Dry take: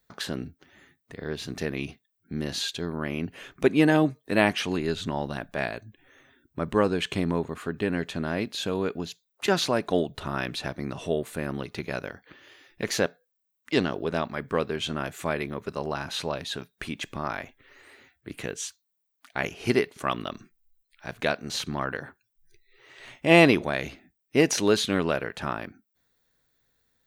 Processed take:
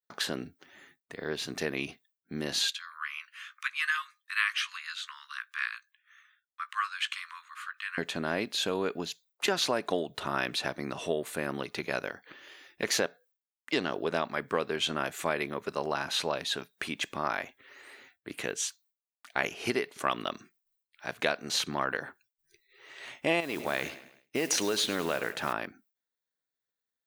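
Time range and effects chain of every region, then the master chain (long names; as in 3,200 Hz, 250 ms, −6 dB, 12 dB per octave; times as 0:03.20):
0:02.70–0:07.98: Butterworth high-pass 1,100 Hz 96 dB per octave + spectral tilt −2 dB per octave + double-tracking delay 17 ms −12 dB
0:23.40–0:25.53: noise that follows the level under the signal 21 dB + downward compressor 3 to 1, threshold −24 dBFS + repeating echo 105 ms, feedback 47%, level −16 dB
whole clip: downward compressor 10 to 1, threshold −23 dBFS; downward expander −58 dBFS; high-pass filter 420 Hz 6 dB per octave; level +2 dB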